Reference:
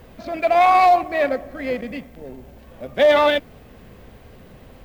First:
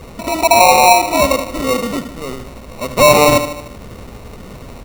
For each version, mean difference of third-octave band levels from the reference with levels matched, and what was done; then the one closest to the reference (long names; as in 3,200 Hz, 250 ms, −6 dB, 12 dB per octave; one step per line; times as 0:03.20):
9.0 dB: in parallel at +2 dB: downward compressor, threshold −28 dBFS, peak gain reduction 15.5 dB
on the sum: repeating echo 75 ms, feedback 53%, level −10 dB
decimation without filtering 27×
level +3.5 dB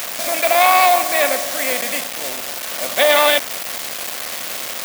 15.0 dB: compressor on every frequency bin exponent 0.6
bit reduction 5 bits
spectral tilt +3.5 dB per octave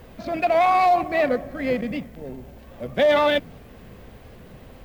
3.0 dB: brickwall limiter −12.5 dBFS, peak gain reduction 5 dB
dynamic equaliser 150 Hz, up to +8 dB, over −46 dBFS, Q 1.2
wow of a warped record 78 rpm, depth 100 cents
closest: third